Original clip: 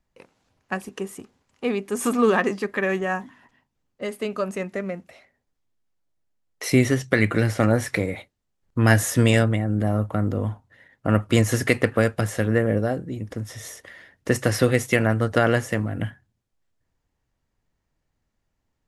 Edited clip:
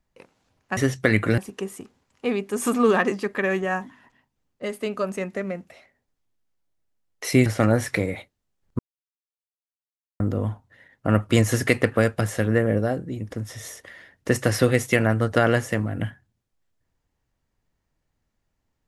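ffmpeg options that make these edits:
-filter_complex "[0:a]asplit=6[a][b][c][d][e][f];[a]atrim=end=0.772[g];[b]atrim=start=6.848:end=7.462[h];[c]atrim=start=0.768:end=6.852[i];[d]atrim=start=7.458:end=8.79,asetpts=PTS-STARTPTS,afade=t=out:st=1.328:d=0.004:c=hsin[j];[e]atrim=start=8.79:end=10.2,asetpts=PTS-STARTPTS,volume=0[k];[f]atrim=start=10.2,asetpts=PTS-STARTPTS,afade=t=in:d=0.004:c=hsin[l];[g][h]acrossfade=d=0.004:c1=hsin:c2=hsin[m];[m][i]acrossfade=d=0.004:c1=hsin:c2=hsin[n];[j][k][l]concat=n=3:v=0:a=1[o];[n][o]acrossfade=d=0.004:c1=hsin:c2=hsin"

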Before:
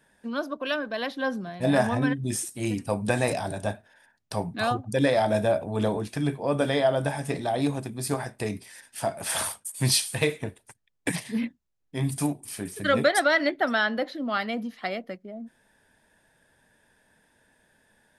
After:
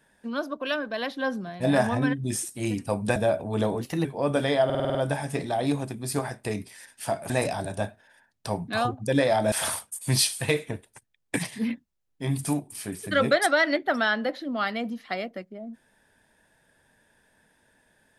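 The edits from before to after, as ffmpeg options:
-filter_complex "[0:a]asplit=12[a][b][c][d][e][f][g][h][i][j][k][l];[a]atrim=end=3.162[m];[b]atrim=start=5.378:end=6.034[n];[c]atrim=start=6.03:end=6.3,asetpts=PTS-STARTPTS,asetrate=49833,aresample=44100,atrim=end_sample=10537,asetpts=PTS-STARTPTS[o];[d]atrim=start=6.296:end=6.952[p];[e]atrim=start=6.898:end=6.952[q];[f]atrim=start=6.898:end=6.952[r];[g]atrim=start=6.898:end=6.952[s];[h]atrim=start=6.898:end=6.952[t];[i]atrim=start=6.898:end=6.952[u];[j]atrim=start=6.898:end=9.252[v];[k]atrim=start=3.158:end=5.382[w];[l]atrim=start=9.248[x];[m][n]acrossfade=d=0.004:c1=hsin:c2=hsin[y];[y][o]acrossfade=d=0.004:c1=hsin:c2=hsin[z];[z][p]acrossfade=d=0.004:c1=hsin:c2=hsin[aa];[aa][q]acrossfade=d=0.004:c1=hsin:c2=hsin[ab];[ab][r]acrossfade=d=0.004:c1=hsin:c2=hsin[ac];[ac][s]acrossfade=d=0.004:c1=hsin:c2=hsin[ad];[ad][t]acrossfade=d=0.004:c1=hsin:c2=hsin[ae];[ae][u]acrossfade=d=0.004:c1=hsin:c2=hsin[af];[af][v]acrossfade=d=0.004:c1=hsin:c2=hsin[ag];[ag][w]acrossfade=d=0.004:c1=hsin:c2=hsin[ah];[ah][x]acrossfade=d=0.004:c1=hsin:c2=hsin"

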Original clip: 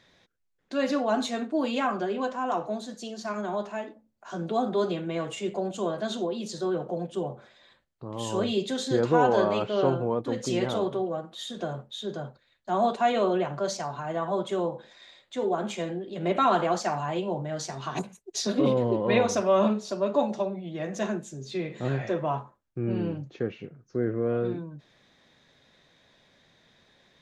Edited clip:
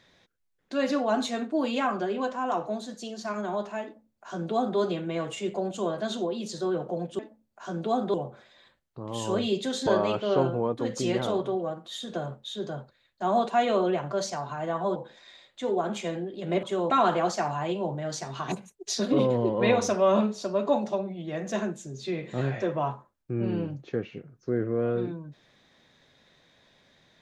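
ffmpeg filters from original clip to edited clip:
-filter_complex "[0:a]asplit=7[a][b][c][d][e][f][g];[a]atrim=end=7.192[h];[b]atrim=start=3.838:end=4.792[i];[c]atrim=start=7.188:end=8.922[j];[d]atrim=start=9.338:end=14.432[k];[e]atrim=start=14.698:end=16.372[l];[f]atrim=start=14.428:end=14.702[m];[g]atrim=start=16.368[n];[h][i]acrossfade=d=0.004:c1=hsin:c2=hsin[o];[o][j]acrossfade=d=0.004:c1=hsin:c2=hsin[p];[p][k]acrossfade=d=0.004:c1=hsin:c2=hsin[q];[q][l]acrossfade=d=0.004:c1=hsin:c2=hsin[r];[r][m]acrossfade=d=0.004:c1=hsin:c2=hsin[s];[s][n]acrossfade=d=0.004:c1=hsin:c2=hsin"

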